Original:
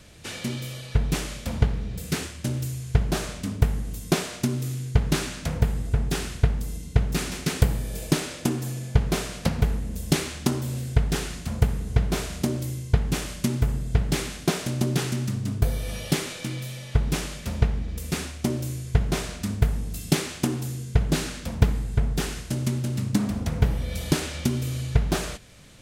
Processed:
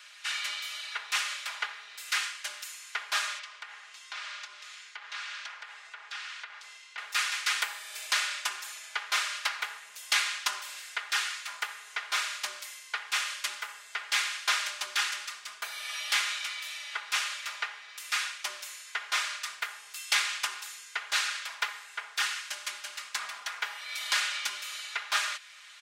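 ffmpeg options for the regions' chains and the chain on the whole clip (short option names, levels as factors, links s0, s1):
-filter_complex "[0:a]asettb=1/sr,asplit=3[s0][s1][s2];[s0]atrim=end=3.394[s3];[s1]atrim=start=3.39:end=6.98,asetpts=PTS-STARTPTS,afade=t=in:d=0.004:c=qsin,afade=t=out:st=3.586:d=0.004:c=qsin,highpass=410,lowpass=5100,acompressor=threshold=0.00891:ratio=3:attack=3.2:release=140:knee=1:detection=peak[s4];[s2]atrim=start=6.976[s5];[s3][s4]acrossfade=d=0.004:c1=hsin:c2=qsin[s6];[s6][s5]acrossfade=d=0.004:c1=qsin:c2=hsin,highpass=f=1200:w=0.5412,highpass=f=1200:w=1.3066,equalizer=f=14000:t=o:w=1.5:g=-14.5,aecho=1:1:4.9:0.68,volume=2"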